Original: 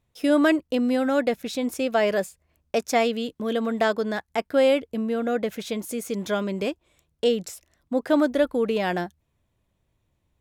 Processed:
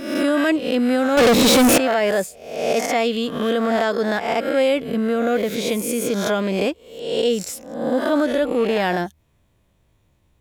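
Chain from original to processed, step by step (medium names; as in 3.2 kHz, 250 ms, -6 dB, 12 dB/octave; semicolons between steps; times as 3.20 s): reverse spectral sustain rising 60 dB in 0.70 s; in parallel at +3 dB: compression, threshold -28 dBFS, peak gain reduction 13 dB; on the sum: peak limiter -10.5 dBFS, peak gain reduction 10.5 dB; 1.17–1.78 s: waveshaping leveller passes 5; attacks held to a fixed rise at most 130 dB/s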